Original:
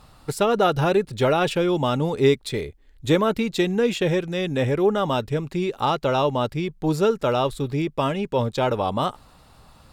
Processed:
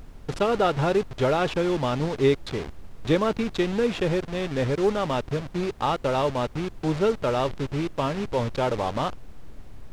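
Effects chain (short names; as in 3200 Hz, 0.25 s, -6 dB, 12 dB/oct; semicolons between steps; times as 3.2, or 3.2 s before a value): level-crossing sampler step -26 dBFS; LPF 5200 Hz 12 dB/oct; added noise brown -40 dBFS; gain -2.5 dB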